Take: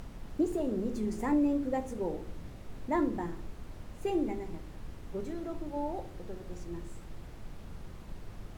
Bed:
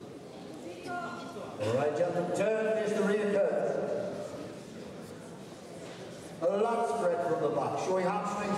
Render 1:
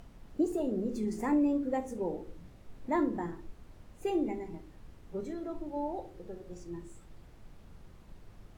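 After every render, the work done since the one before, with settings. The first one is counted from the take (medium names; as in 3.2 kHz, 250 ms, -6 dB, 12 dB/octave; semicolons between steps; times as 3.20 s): noise print and reduce 8 dB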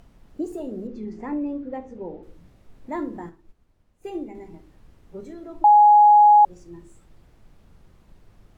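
0.87–2.23 s: distance through air 190 m; 3.29–4.35 s: upward expansion, over -51 dBFS; 5.64–6.45 s: bleep 834 Hz -9 dBFS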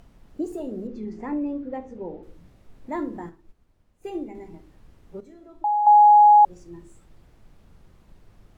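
5.20–5.87 s: feedback comb 53 Hz, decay 0.68 s, harmonics odd, mix 70%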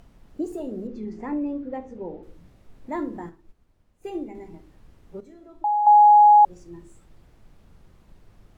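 no audible change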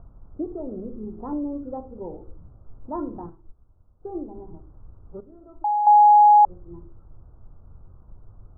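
steep low-pass 1.4 kHz 72 dB/octave; resonant low shelf 140 Hz +6.5 dB, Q 1.5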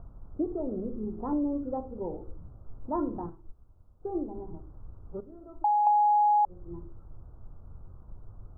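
compression 6:1, threshold -22 dBFS, peak gain reduction 10 dB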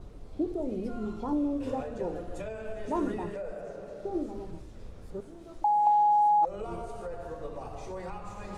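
add bed -10 dB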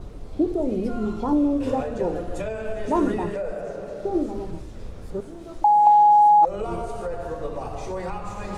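trim +8.5 dB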